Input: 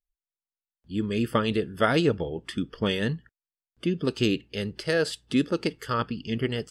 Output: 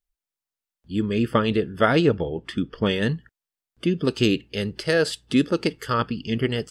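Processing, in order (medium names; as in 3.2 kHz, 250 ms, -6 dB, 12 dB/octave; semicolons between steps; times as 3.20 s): 1.02–3.02 s: low-pass 3.8 kHz 6 dB/octave; trim +4 dB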